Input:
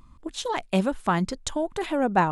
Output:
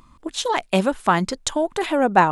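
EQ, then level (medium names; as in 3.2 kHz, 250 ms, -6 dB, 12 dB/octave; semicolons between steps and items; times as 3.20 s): bass shelf 200 Hz -9.5 dB; +7.0 dB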